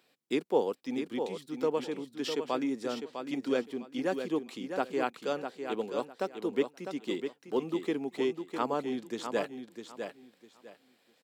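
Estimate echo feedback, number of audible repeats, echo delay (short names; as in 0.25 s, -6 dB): 23%, 3, 0.653 s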